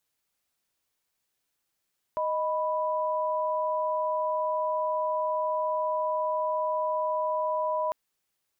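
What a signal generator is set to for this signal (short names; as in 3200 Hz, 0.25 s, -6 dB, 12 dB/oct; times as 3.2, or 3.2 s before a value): chord D#5/B5 sine, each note -28 dBFS 5.75 s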